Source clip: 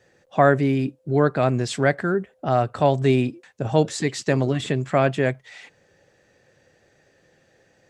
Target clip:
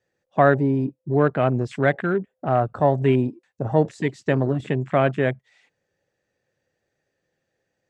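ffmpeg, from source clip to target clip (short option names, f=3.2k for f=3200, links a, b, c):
-af "afwtdn=0.0251"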